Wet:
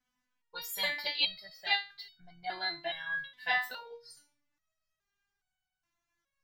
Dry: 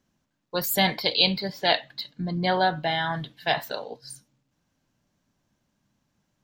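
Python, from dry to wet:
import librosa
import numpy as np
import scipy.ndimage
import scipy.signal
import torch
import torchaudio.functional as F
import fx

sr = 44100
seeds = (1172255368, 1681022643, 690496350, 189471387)

y = fx.graphic_eq_10(x, sr, hz=(250, 500, 1000, 2000), db=(-8, -7, 3, 7))
y = fx.resonator_held(y, sr, hz=2.4, low_hz=250.0, high_hz=750.0)
y = y * librosa.db_to_amplitude(5.5)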